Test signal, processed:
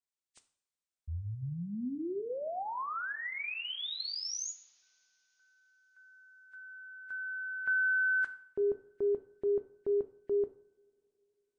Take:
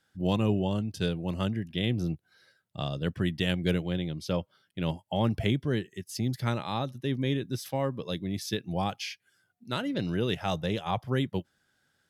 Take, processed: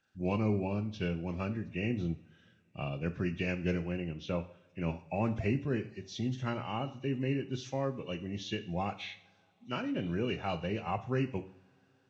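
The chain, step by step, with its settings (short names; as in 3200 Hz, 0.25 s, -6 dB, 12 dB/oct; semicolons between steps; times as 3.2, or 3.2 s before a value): nonlinear frequency compression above 1700 Hz 1.5:1; two-slope reverb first 0.52 s, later 4 s, from -27 dB, DRR 9 dB; gain -4.5 dB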